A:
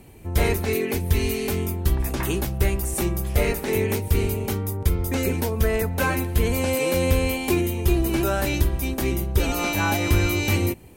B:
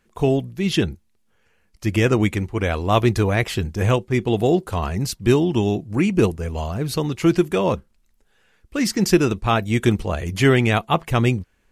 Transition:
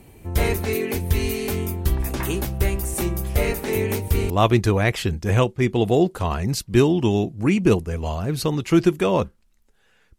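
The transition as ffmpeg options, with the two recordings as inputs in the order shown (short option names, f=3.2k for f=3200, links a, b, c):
-filter_complex "[0:a]apad=whole_dur=10.18,atrim=end=10.18,atrim=end=4.302[a];[1:a]atrim=start=2.818:end=8.7[b];[a][b]acrossfade=d=0.004:c1=hsin:c2=hsin"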